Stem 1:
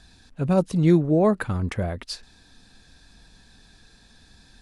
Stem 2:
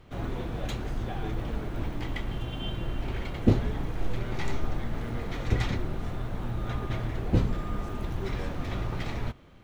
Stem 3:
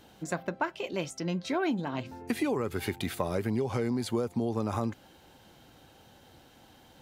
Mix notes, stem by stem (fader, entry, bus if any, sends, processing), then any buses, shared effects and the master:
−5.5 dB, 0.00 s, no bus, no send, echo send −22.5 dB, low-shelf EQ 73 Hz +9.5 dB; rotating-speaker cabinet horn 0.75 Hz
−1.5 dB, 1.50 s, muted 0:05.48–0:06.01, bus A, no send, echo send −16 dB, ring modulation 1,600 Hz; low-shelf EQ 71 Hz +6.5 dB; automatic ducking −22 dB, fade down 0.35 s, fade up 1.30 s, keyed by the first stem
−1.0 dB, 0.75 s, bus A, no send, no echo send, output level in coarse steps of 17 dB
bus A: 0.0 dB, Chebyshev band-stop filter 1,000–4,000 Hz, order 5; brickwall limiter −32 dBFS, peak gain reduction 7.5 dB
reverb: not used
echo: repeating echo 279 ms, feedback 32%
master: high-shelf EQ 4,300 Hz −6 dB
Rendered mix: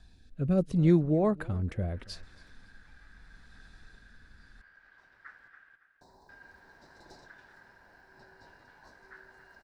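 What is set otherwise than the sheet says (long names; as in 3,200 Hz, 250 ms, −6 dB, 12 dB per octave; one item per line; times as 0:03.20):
stem 2 −1.5 dB → −11.0 dB
stem 3: muted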